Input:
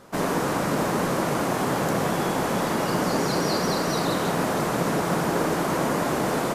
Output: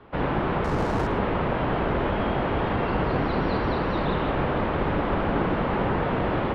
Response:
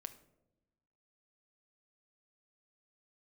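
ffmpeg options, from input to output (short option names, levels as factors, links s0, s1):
-filter_complex "[0:a]highpass=f=150:t=q:w=0.5412,highpass=f=150:t=q:w=1.307,lowpass=f=3400:t=q:w=0.5176,lowpass=f=3400:t=q:w=0.7071,lowpass=f=3400:t=q:w=1.932,afreqshift=-130,asettb=1/sr,asplit=3[s0][s1][s2];[s0]atrim=end=0.644[s3];[s1]atrim=start=0.64:end=1.07,asetpts=PTS-STARTPTS,afade=t=in:d=0.004:c=qsin,afade=t=out:st=0.426:d=0.004:c=qsin,adynamicsmooth=sensitivity=6:basefreq=640[s4];[s2]atrim=start=1.066[s5];[s3][s4]acrossfade=d=0.004:c1=hsin:c2=qsin[s6];[s6][s5]acrossfade=d=0.004:c1=qsin:c2=hsin,asplit=2[s7][s8];[1:a]atrim=start_sample=2205,adelay=109[s9];[s8][s9]afir=irnorm=-1:irlink=0,volume=0.316[s10];[s7][s10]amix=inputs=2:normalize=0"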